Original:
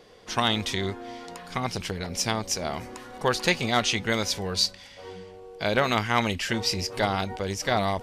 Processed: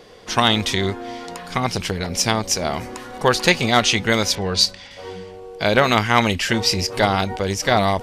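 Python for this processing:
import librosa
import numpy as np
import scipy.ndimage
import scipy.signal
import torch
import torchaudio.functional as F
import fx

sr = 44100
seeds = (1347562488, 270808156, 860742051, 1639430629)

y = fx.env_lowpass(x, sr, base_hz=2900.0, full_db=-20.5, at=(4.35, 4.91))
y = fx.end_taper(y, sr, db_per_s=410.0)
y = F.gain(torch.from_numpy(y), 7.5).numpy()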